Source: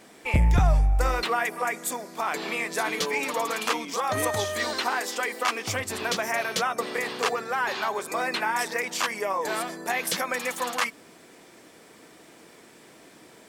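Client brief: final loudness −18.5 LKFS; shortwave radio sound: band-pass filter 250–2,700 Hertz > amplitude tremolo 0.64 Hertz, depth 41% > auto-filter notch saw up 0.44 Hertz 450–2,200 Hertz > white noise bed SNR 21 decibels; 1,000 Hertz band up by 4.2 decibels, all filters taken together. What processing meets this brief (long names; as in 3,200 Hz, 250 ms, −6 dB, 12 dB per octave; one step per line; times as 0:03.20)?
band-pass filter 250–2,700 Hz
parametric band 1,000 Hz +5.5 dB
amplitude tremolo 0.64 Hz, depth 41%
auto-filter notch saw up 0.44 Hz 450–2,200 Hz
white noise bed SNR 21 dB
level +14 dB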